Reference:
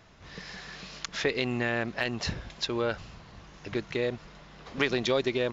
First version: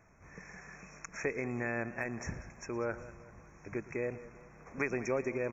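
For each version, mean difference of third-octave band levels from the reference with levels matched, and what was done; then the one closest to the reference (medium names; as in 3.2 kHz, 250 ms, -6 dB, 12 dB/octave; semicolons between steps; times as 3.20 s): 4.5 dB: FFT band-reject 2.6–5.4 kHz; crackle 19 per s -60 dBFS; on a send: delay 114 ms -19 dB; on the sum: modulated delay 194 ms, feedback 45%, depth 66 cents, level -16.5 dB; trim -6.5 dB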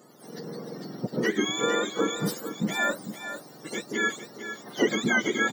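10.0 dB: spectrum inverted on a logarithmic axis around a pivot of 910 Hz; high-pass 250 Hz 12 dB/octave; peaking EQ 2.5 kHz -12 dB 0.31 oct; on a send: delay 451 ms -10.5 dB; on the sum: trim +5.5 dB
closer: first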